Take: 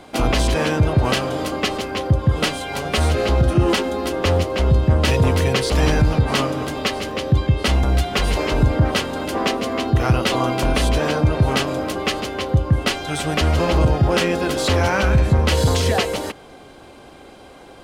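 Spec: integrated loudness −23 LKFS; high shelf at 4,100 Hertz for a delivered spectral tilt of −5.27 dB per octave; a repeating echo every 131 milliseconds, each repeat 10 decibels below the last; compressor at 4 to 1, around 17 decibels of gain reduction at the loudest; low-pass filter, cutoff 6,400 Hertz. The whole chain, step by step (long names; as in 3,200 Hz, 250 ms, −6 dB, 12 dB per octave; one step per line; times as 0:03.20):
low-pass filter 6,400 Hz
high-shelf EQ 4,100 Hz +3 dB
downward compressor 4 to 1, threshold −32 dBFS
repeating echo 131 ms, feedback 32%, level −10 dB
level +10 dB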